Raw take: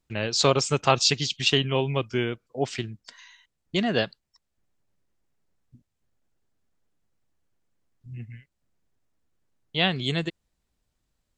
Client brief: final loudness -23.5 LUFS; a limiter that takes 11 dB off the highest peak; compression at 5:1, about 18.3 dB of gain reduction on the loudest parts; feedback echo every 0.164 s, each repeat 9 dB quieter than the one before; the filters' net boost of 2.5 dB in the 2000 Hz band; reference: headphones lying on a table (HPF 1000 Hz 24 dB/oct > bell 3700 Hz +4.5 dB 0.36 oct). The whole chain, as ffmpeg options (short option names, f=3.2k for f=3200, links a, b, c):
-af "equalizer=f=2k:t=o:g=3,acompressor=threshold=-35dB:ratio=5,alimiter=level_in=4.5dB:limit=-24dB:level=0:latency=1,volume=-4.5dB,highpass=f=1k:w=0.5412,highpass=f=1k:w=1.3066,equalizer=f=3.7k:t=o:w=0.36:g=4.5,aecho=1:1:164|328|492|656:0.355|0.124|0.0435|0.0152,volume=19dB"